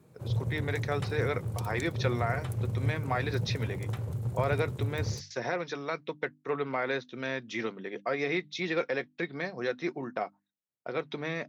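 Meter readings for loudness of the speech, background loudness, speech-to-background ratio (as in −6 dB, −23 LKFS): −34.0 LKFS, −34.5 LKFS, 0.5 dB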